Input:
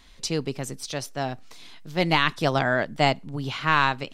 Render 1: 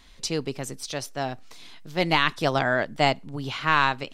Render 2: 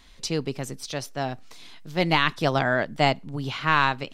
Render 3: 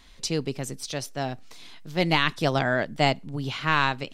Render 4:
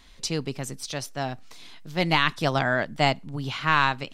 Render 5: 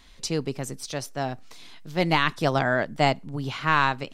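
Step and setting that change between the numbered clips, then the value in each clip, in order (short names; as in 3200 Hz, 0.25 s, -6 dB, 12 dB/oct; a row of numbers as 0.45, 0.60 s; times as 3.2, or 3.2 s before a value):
dynamic EQ, frequency: 160, 8600, 1100, 430, 3300 Hz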